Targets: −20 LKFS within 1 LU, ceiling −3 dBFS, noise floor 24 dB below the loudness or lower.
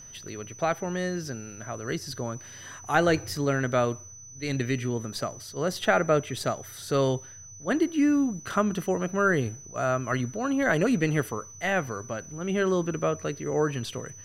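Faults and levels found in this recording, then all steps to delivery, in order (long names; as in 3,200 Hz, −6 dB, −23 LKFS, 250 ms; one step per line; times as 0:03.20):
interfering tone 6,000 Hz; level of the tone −44 dBFS; integrated loudness −27.5 LKFS; sample peak −8.0 dBFS; target loudness −20.0 LKFS
→ notch filter 6,000 Hz, Q 30
level +7.5 dB
brickwall limiter −3 dBFS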